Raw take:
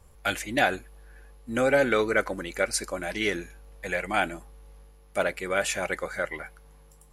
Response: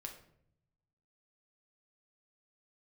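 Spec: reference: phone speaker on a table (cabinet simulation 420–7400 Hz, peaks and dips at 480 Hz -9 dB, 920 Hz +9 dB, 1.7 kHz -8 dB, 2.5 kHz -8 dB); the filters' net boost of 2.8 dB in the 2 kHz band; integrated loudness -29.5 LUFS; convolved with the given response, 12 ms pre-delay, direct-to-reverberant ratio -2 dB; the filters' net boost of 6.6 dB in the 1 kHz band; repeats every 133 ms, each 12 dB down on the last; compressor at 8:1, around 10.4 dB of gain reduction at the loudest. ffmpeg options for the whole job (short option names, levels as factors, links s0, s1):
-filter_complex "[0:a]equalizer=f=1000:t=o:g=4.5,equalizer=f=2000:t=o:g=9,acompressor=threshold=0.0631:ratio=8,aecho=1:1:133|266|399:0.251|0.0628|0.0157,asplit=2[s0][s1];[1:a]atrim=start_sample=2205,adelay=12[s2];[s1][s2]afir=irnorm=-1:irlink=0,volume=1.88[s3];[s0][s3]amix=inputs=2:normalize=0,highpass=f=420:w=0.5412,highpass=f=420:w=1.3066,equalizer=f=480:t=q:w=4:g=-9,equalizer=f=920:t=q:w=4:g=9,equalizer=f=1700:t=q:w=4:g=-8,equalizer=f=2500:t=q:w=4:g=-8,lowpass=f=7400:w=0.5412,lowpass=f=7400:w=1.3066,volume=0.891"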